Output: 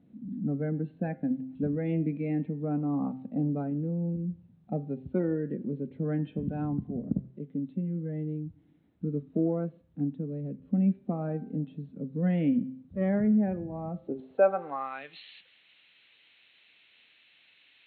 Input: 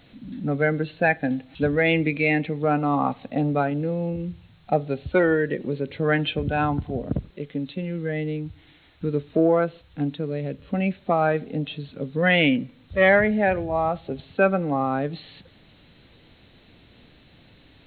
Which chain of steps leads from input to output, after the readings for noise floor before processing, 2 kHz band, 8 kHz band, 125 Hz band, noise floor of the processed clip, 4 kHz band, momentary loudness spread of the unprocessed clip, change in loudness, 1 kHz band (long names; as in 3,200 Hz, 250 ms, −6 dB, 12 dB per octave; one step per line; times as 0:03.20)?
−55 dBFS, −22.0 dB, can't be measured, −4.0 dB, −63 dBFS, below −20 dB, 11 LU, −7.5 dB, −14.0 dB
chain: band-pass filter sweep 210 Hz → 2,600 Hz, 0:13.95–0:15.00
hum removal 130.2 Hz, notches 27
level +1 dB